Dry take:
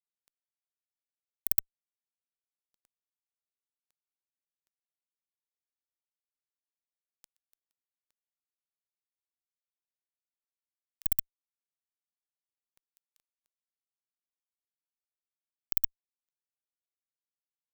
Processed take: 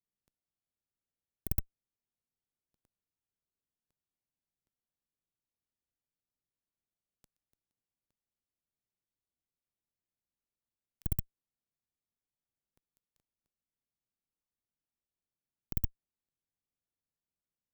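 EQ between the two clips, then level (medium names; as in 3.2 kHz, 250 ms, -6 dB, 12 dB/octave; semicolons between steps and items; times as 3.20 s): tone controls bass +3 dB, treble 0 dB; tilt shelf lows +9 dB, about 700 Hz; 0.0 dB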